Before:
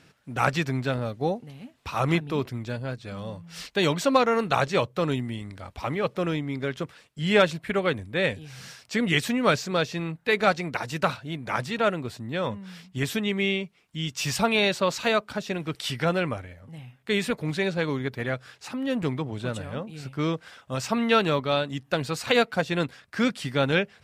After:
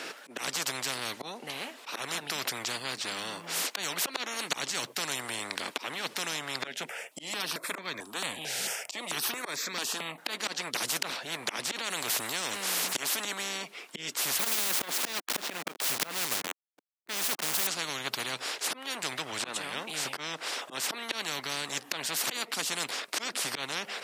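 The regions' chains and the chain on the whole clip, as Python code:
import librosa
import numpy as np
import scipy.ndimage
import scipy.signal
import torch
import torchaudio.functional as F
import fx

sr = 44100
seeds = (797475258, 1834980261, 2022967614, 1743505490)

y = fx.chain(x, sr, fx.peak_eq(hz=4700.0, db=-4.0, octaves=0.76),
    fx.phaser_held(hz=4.5, low_hz=300.0, high_hz=2900.0), at=(6.67, 10.18))
y = fx.chain(y, sr, fx.highpass(hz=530.0, slope=6),
    fx.quant_float(bits=8),
    fx.env_flatten(amount_pct=70), at=(11.71, 13.25))
y = fx.chain(y, sr, fx.delta_hold(step_db=-34.0),
    fx.clip_hard(threshold_db=-21.0),
    fx.transformer_sat(knee_hz=130.0), at=(14.39, 17.67))
y = fx.auto_swell(y, sr, attack_ms=369.0)
y = scipy.signal.sosfilt(scipy.signal.butter(4, 320.0, 'highpass', fs=sr, output='sos'), y)
y = fx.spectral_comp(y, sr, ratio=10.0)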